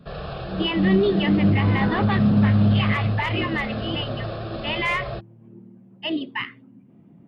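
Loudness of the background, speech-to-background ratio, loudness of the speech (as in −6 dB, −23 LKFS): −33.5 LKFS, 11.5 dB, −22.0 LKFS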